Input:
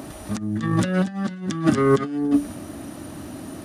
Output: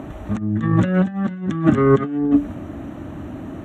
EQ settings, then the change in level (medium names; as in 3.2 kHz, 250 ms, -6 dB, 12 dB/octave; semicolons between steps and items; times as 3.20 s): boxcar filter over 9 samples; bass shelf 92 Hz +9 dB; +2.5 dB